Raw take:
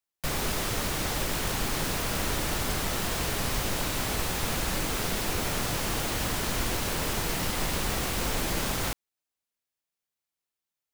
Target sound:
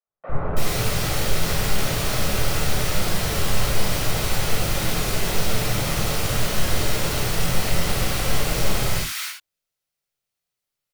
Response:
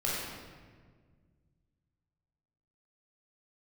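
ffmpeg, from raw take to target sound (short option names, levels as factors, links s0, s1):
-filter_complex "[0:a]acrossover=split=280|1400[s0][s1][s2];[s0]adelay=50[s3];[s2]adelay=330[s4];[s3][s1][s4]amix=inputs=3:normalize=0[s5];[1:a]atrim=start_sample=2205,atrim=end_sample=6174[s6];[s5][s6]afir=irnorm=-1:irlink=0"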